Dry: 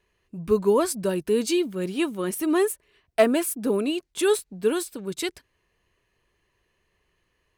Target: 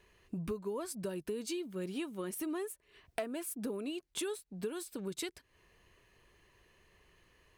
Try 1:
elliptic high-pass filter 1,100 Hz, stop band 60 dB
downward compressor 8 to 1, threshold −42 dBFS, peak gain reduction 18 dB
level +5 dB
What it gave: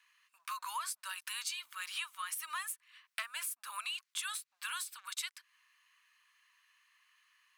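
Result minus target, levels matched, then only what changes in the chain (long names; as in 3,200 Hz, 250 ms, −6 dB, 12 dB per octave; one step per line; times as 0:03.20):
1,000 Hz band +7.0 dB
remove: elliptic high-pass filter 1,100 Hz, stop band 60 dB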